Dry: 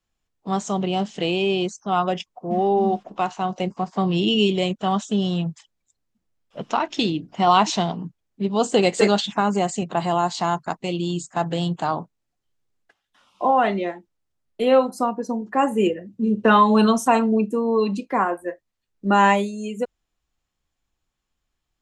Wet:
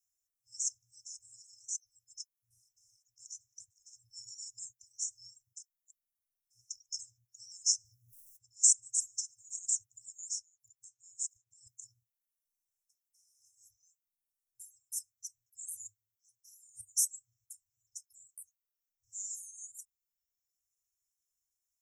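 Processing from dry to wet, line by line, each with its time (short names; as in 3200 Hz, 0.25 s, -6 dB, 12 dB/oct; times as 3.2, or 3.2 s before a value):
7.85–8.77 fast leveller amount 50%
10.33–11.67 compressor, threshold -30 dBFS
16.15–16.81 HPF 340 Hz
whole clip: FFT band-reject 120–5200 Hz; reverb removal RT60 0.97 s; tilt +4 dB/oct; gain -7.5 dB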